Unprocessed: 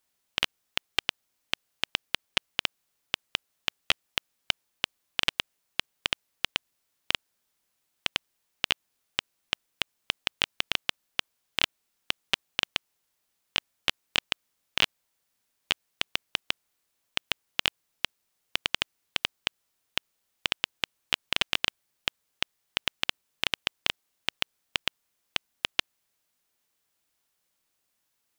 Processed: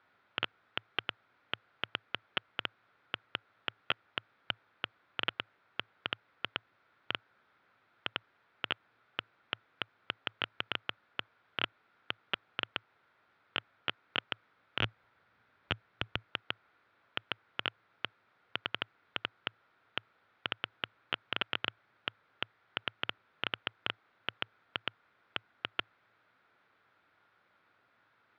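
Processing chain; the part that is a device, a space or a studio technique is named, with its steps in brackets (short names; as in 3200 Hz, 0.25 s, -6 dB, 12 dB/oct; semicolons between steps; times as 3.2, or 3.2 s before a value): 14.8–16.27 low shelf 110 Hz +11 dB; guitar amplifier (tube stage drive 26 dB, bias 0.2; tone controls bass -5 dB, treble -9 dB; speaker cabinet 79–3400 Hz, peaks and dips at 110 Hz +9 dB, 1400 Hz +9 dB, 2900 Hz -8 dB); gain +14 dB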